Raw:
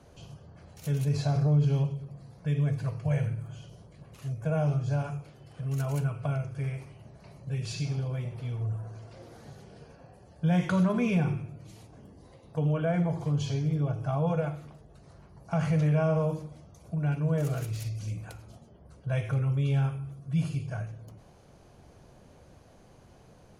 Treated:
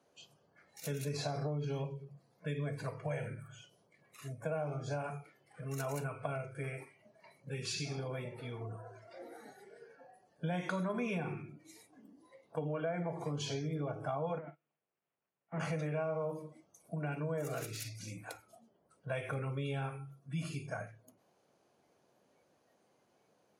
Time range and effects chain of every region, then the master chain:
0:14.38–0:15.60: linear delta modulator 16 kbit/s, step −47 dBFS + expander for the loud parts 2.5 to 1, over −41 dBFS
whole clip: high-pass filter 270 Hz 12 dB per octave; downward compressor 4 to 1, threshold −36 dBFS; noise reduction from a noise print of the clip's start 15 dB; level +2 dB

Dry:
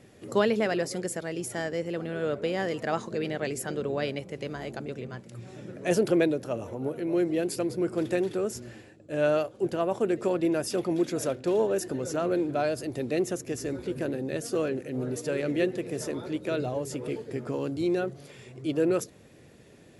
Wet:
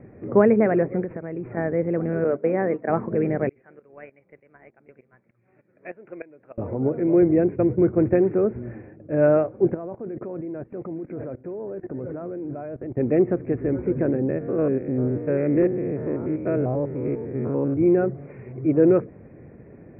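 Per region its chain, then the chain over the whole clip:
0:01.04–0:01.57: running median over 5 samples + downward compressor 2.5 to 1, threshold −38 dBFS
0:02.24–0:02.90: mains-hum notches 50/100/150/200/250/300/350 Hz + noise gate −33 dBFS, range −14 dB + high-pass filter 180 Hz
0:03.49–0:06.58: first-order pre-emphasis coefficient 0.97 + shaped tremolo saw up 3.3 Hz, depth 80% + transient designer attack +8 dB, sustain 0 dB
0:07.22–0:08.14: downward expander −33 dBFS + parametric band 81 Hz +14 dB 0.76 octaves
0:09.74–0:12.97: high-frequency loss of the air 220 metres + output level in coarse steps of 20 dB
0:14.29–0:17.76: spectrum averaged block by block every 100 ms + gain into a clipping stage and back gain 20 dB
whole clip: Butterworth low-pass 2,400 Hz 96 dB per octave; tilt shelving filter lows +6 dB, about 870 Hz; level +4.5 dB

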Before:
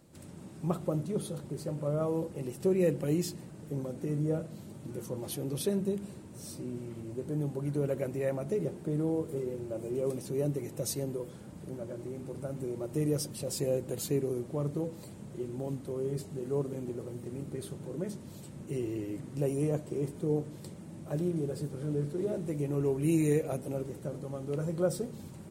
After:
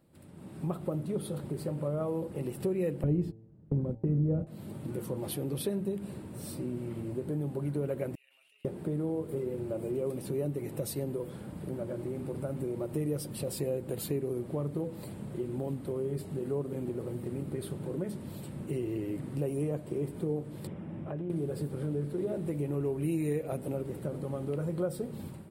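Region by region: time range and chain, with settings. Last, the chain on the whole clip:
0:03.03–0:04.47: noise gate −39 dBFS, range −26 dB + spectral tilt −4.5 dB per octave + hum removal 111.6 Hz, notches 8
0:08.15–0:08.65: noise gate −25 dBFS, range −35 dB + high-pass with resonance 2,800 Hz, resonance Q 14 + envelope flattener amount 100%
0:20.67–0:21.30: downward compressor 4 to 1, threshold −38 dBFS + Savitzky-Golay smoothing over 25 samples
whole clip: downward compressor 2.5 to 1, threshold −37 dBFS; parametric band 6,300 Hz −13.5 dB 0.61 octaves; automatic gain control gain up to 11 dB; level −6 dB

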